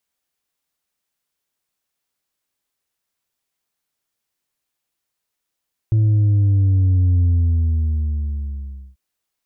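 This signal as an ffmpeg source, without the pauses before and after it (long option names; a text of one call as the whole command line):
ffmpeg -f lavfi -i "aevalsrc='0.237*clip((3.04-t)/1.74,0,1)*tanh(1.41*sin(2*PI*110*3.04/log(65/110)*(exp(log(65/110)*t/3.04)-1)))/tanh(1.41)':duration=3.04:sample_rate=44100" out.wav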